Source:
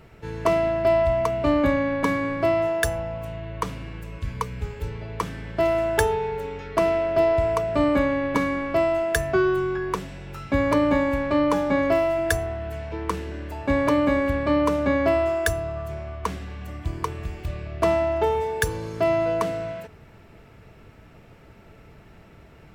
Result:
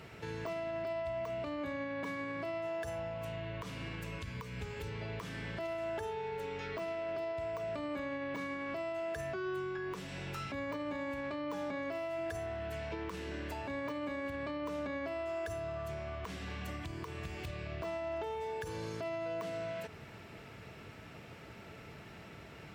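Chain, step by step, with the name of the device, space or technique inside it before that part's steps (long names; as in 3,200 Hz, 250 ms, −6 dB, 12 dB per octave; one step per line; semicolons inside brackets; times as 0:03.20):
broadcast voice chain (high-pass filter 87 Hz 12 dB per octave; de-essing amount 75%; downward compressor 4 to 1, threshold −37 dBFS, peak gain reduction 17.5 dB; parametric band 4,000 Hz +6 dB 2.8 octaves; brickwall limiter −29.5 dBFS, peak gain reduction 9.5 dB)
level −1.5 dB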